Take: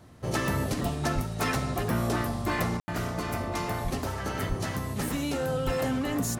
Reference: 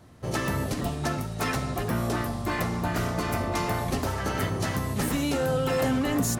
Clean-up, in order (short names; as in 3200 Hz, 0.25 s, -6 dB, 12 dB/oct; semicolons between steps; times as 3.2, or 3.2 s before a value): de-plosive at 1.14/3.83/4.48/5.65; room tone fill 2.8–2.88; gain 0 dB, from 2.77 s +3.5 dB